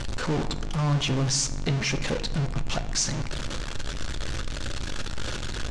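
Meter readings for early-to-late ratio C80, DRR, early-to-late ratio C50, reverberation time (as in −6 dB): 16.0 dB, 9.0 dB, 14.0 dB, 1.4 s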